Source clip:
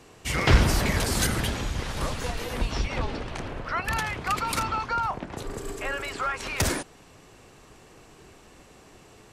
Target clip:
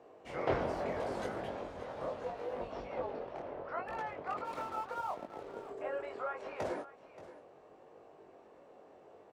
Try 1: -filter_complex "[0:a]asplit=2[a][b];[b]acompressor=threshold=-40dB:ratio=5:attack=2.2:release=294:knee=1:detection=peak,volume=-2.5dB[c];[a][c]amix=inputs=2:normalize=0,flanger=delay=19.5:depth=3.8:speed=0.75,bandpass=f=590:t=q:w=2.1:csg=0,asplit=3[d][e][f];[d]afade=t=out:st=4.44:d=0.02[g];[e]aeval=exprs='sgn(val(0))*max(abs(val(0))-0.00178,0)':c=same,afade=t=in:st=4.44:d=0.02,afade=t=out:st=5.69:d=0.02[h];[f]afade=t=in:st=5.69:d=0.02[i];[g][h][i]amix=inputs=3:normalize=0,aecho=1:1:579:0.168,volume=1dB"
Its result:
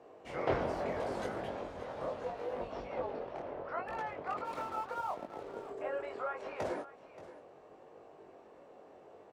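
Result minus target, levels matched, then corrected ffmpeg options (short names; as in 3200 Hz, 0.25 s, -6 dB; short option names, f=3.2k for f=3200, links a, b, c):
compressor: peak gain reduction -9 dB
-filter_complex "[0:a]asplit=2[a][b];[b]acompressor=threshold=-51dB:ratio=5:attack=2.2:release=294:knee=1:detection=peak,volume=-2.5dB[c];[a][c]amix=inputs=2:normalize=0,flanger=delay=19.5:depth=3.8:speed=0.75,bandpass=f=590:t=q:w=2.1:csg=0,asplit=3[d][e][f];[d]afade=t=out:st=4.44:d=0.02[g];[e]aeval=exprs='sgn(val(0))*max(abs(val(0))-0.00178,0)':c=same,afade=t=in:st=4.44:d=0.02,afade=t=out:st=5.69:d=0.02[h];[f]afade=t=in:st=5.69:d=0.02[i];[g][h][i]amix=inputs=3:normalize=0,aecho=1:1:579:0.168,volume=1dB"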